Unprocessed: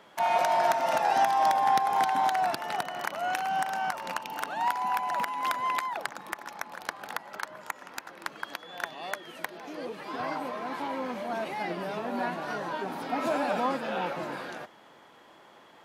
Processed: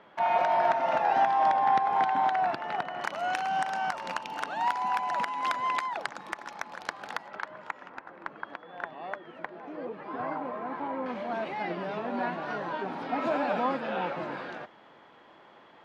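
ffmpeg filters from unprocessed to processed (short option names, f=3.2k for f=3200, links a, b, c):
-af "asetnsamples=n=441:p=0,asendcmd='3.02 lowpass f 6400;7.28 lowpass f 2900;7.89 lowpass f 1600;11.06 lowpass f 3400',lowpass=2.6k"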